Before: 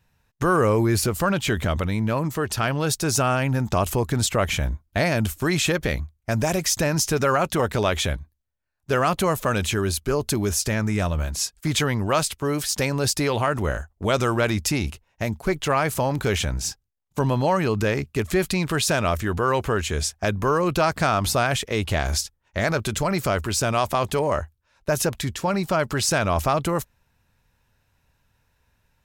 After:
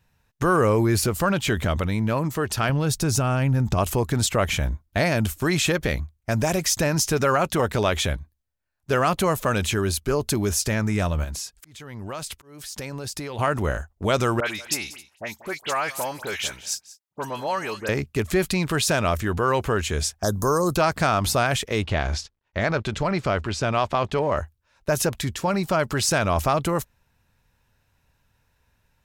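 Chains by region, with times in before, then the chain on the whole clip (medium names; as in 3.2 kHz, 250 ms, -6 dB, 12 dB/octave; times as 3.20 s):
2.69–3.78 s: bass shelf 200 Hz +11.5 dB + compression 3:1, threshold -19 dBFS
11.24–13.39 s: compression 10:1, threshold -28 dBFS + slow attack 430 ms
14.40–17.89 s: high-pass 1 kHz 6 dB/octave + phase dispersion highs, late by 66 ms, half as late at 2.3 kHz + delay 186 ms -18 dB
20.23–20.76 s: Butterworth band-stop 2.5 kHz, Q 0.79 + tone controls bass 0 dB, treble +14 dB
21.82–24.37 s: companding laws mixed up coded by A + low-pass 4.3 kHz
whole clip: none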